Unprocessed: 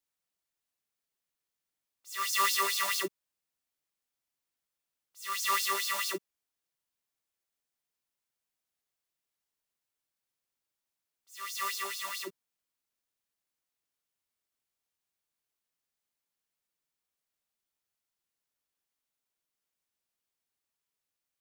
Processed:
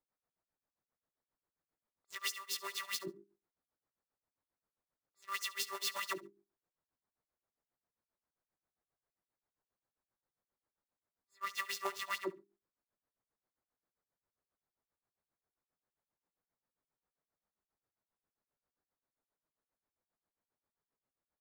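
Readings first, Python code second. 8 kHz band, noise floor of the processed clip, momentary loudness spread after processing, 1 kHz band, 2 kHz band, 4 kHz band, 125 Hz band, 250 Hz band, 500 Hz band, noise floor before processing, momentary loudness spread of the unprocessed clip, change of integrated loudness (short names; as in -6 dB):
-9.5 dB, under -85 dBFS, 7 LU, -10.5 dB, -8.0 dB, -7.5 dB, n/a, -4.0 dB, -4.5 dB, under -85 dBFS, 14 LU, -9.0 dB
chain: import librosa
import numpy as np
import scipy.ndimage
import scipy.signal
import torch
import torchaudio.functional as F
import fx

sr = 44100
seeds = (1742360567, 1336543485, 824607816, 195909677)

p1 = fx.wiener(x, sr, points=15)
p2 = fx.high_shelf(p1, sr, hz=2700.0, db=-8.5)
p3 = fx.hum_notches(p2, sr, base_hz=50, count=8)
p4 = fx.over_compress(p3, sr, threshold_db=-41.0, ratio=-1.0)
p5 = p4 * (1.0 - 0.96 / 2.0 + 0.96 / 2.0 * np.cos(2.0 * np.pi * 7.5 * (np.arange(len(p4)) / sr)))
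p6 = p5 + fx.echo_feedback(p5, sr, ms=70, feedback_pct=17, wet_db=-19.0, dry=0)
y = F.gain(torch.from_numpy(p6), 3.5).numpy()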